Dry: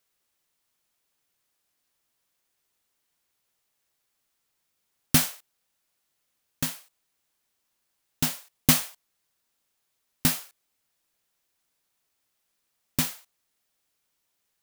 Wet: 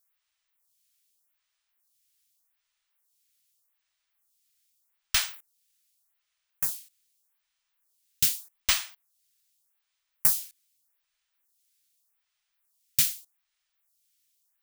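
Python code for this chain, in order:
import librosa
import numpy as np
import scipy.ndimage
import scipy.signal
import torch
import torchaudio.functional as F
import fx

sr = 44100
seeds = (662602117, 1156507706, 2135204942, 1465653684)

y = fx.tone_stack(x, sr, knobs='10-0-10')
y = fx.stagger_phaser(y, sr, hz=0.83)
y = y * librosa.db_to_amplitude(5.5)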